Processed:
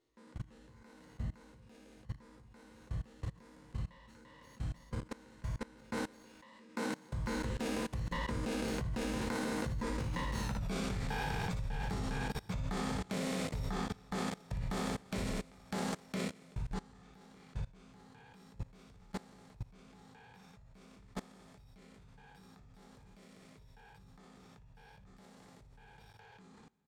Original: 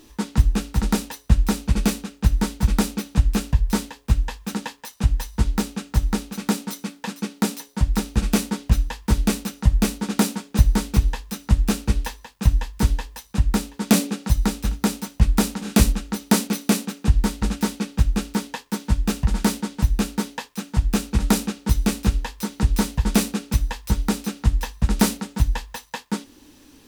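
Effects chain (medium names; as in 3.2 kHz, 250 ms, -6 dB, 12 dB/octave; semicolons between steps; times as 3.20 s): spectral sustain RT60 2.55 s; Doppler pass-by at 10.52 s, 30 m/s, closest 3.6 m; compression 12:1, threshold -31 dBFS, peak gain reduction 23 dB; transient shaper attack 0 dB, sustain +4 dB; ten-band graphic EQ 125 Hz +10 dB, 500 Hz +11 dB, 1 kHz +6 dB, 2 kHz +9 dB, 4 kHz +7 dB, 8 kHz +8 dB; reverb removal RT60 1.3 s; treble shelf 4.4 kHz -8.5 dB; on a send: early reflections 58 ms -5 dB, 77 ms -14.5 dB; on the sum: level held to a coarse grid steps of 22 dB; trim +8 dB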